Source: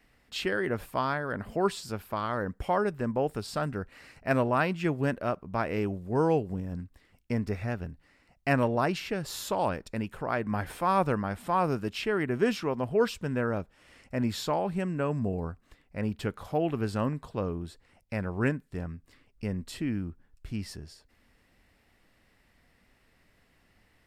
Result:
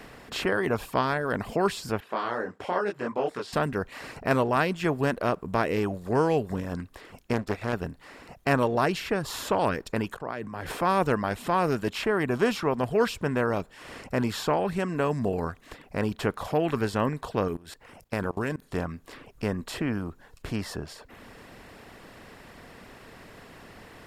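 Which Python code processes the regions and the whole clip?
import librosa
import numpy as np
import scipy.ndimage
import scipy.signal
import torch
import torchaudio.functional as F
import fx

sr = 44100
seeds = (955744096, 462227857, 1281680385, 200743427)

y = fx.chain(x, sr, fx.highpass(hz=350.0, slope=12),
    fx.air_absorb(metres=100.0),
    fx.detune_double(cents=29), at=(2.0, 3.53))
y = fx.chain(y, sr, fx.power_curve(exponent=1.4),
    fx.doppler_dist(depth_ms=0.3), at=(7.33, 7.73))
y = fx.chain(y, sr, fx.high_shelf(hz=6900.0, db=-4.5),
    fx.level_steps(step_db=22),
    fx.band_widen(depth_pct=70), at=(10.14, 10.72))
y = fx.chain(y, sr, fx.high_shelf(hz=7200.0, db=9.5),
    fx.level_steps(step_db=17), at=(17.48, 18.62))
y = fx.bin_compress(y, sr, power=0.6)
y = fx.dereverb_blind(y, sr, rt60_s=0.6)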